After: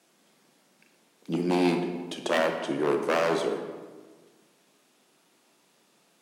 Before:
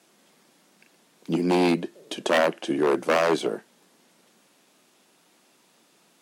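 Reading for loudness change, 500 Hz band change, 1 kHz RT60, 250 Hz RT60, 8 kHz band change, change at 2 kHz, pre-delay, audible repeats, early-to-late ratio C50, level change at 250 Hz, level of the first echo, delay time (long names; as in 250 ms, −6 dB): −3.5 dB, −3.0 dB, 1.4 s, 1.6 s, −4.0 dB, −3.5 dB, 24 ms, no echo audible, 6.5 dB, −3.0 dB, no echo audible, no echo audible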